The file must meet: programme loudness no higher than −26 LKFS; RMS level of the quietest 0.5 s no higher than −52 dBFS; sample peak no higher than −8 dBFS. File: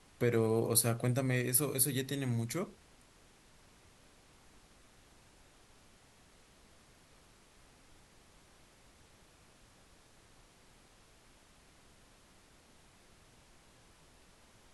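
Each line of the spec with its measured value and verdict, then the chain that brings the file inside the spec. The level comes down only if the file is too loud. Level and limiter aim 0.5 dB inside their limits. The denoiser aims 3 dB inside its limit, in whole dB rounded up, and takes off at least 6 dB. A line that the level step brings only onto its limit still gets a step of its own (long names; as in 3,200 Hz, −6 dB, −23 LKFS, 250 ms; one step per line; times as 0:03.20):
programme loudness −32.0 LKFS: in spec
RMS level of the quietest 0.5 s −63 dBFS: in spec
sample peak −13.5 dBFS: in spec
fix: no processing needed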